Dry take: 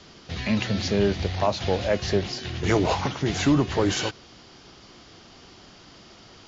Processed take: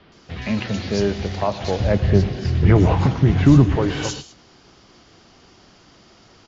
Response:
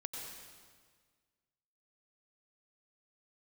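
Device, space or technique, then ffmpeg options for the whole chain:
keyed gated reverb: -filter_complex "[0:a]asettb=1/sr,asplit=3[s0][s1][s2];[s0]atrim=end=1.804[s3];[s1]atrim=start=1.8:end=3.76,asetpts=PTS-STARTPTS,afade=t=in:d=0.004:c=qsin,afade=t=out:st=1.956:d=0.004:c=qsin,bass=f=250:g=13,treble=f=4000:g=-9[s4];[s2]atrim=start=3.756[s5];[s3][s4]acrossfade=d=0.004:c1=hsin:c2=qsin[s6];[s6][s5]acrossfade=d=0.004:c1=qsin:c2=hsin,asplit=3[s7][s8][s9];[1:a]atrim=start_sample=2205[s10];[s8][s10]afir=irnorm=-1:irlink=0[s11];[s9]apad=whole_len=285640[s12];[s11][s12]sidechaingate=range=0.0224:threshold=0.0112:ratio=16:detection=peak,volume=0.473[s13];[s7][s13]amix=inputs=2:normalize=0,acrossover=split=3500[s14][s15];[s15]adelay=120[s16];[s14][s16]amix=inputs=2:normalize=0,volume=0.891"

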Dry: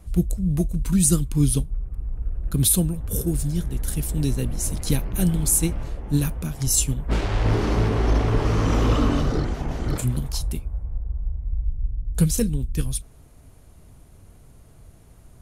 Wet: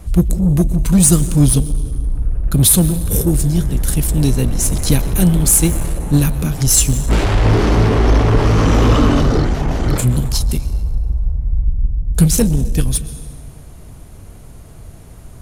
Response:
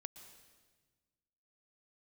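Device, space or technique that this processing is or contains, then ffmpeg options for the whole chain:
saturated reverb return: -filter_complex "[0:a]asplit=2[s0][s1];[1:a]atrim=start_sample=2205[s2];[s1][s2]afir=irnorm=-1:irlink=0,asoftclip=type=tanh:threshold=0.0335,volume=2.11[s3];[s0][s3]amix=inputs=2:normalize=0,volume=1.78"

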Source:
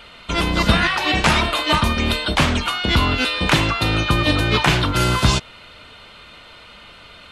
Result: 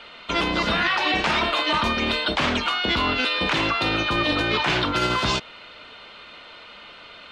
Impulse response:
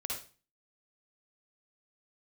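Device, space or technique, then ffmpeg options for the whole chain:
DJ mixer with the lows and highs turned down: -filter_complex "[0:a]acrossover=split=220 6100:gain=0.251 1 0.1[s0][s1][s2];[s0][s1][s2]amix=inputs=3:normalize=0,alimiter=limit=0.237:level=0:latency=1:release=25"

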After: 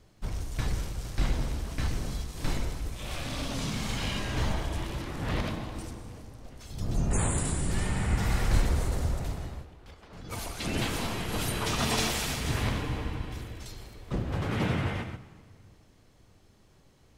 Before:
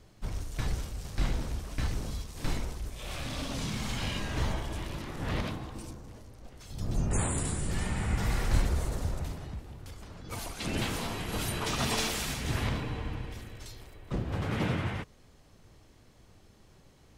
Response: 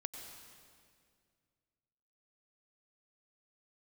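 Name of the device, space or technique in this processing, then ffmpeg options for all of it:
keyed gated reverb: -filter_complex "[0:a]asettb=1/sr,asplit=3[s0][s1][s2];[s0]atrim=end=9.494[s3];[s1]atrim=start=9.49:end=10.13,asetpts=PTS-STARTPTS,afade=t=in:d=0.004:c=qsin,afade=t=out:st=0.636:d=0.004:c=qsin,acrossover=split=260 4500:gain=0.2 1 0.224[s4][s5][s6];[s4][s5][s6]amix=inputs=3:normalize=0[s7];[s2]atrim=start=10.126[s8];[s3][s7]acrossfade=d=0.004:c1=hsin:c2=qsin[s9];[s9][s8]acrossfade=d=0.004:c1=qsin:c2=hsin,asplit=3[s10][s11][s12];[1:a]atrim=start_sample=2205[s13];[s11][s13]afir=irnorm=-1:irlink=0[s14];[s12]apad=whole_len=757456[s15];[s14][s15]sidechaingate=range=0.398:threshold=0.00282:ratio=16:detection=peak,volume=2[s16];[s10][s16]amix=inputs=2:normalize=0,volume=0.501"

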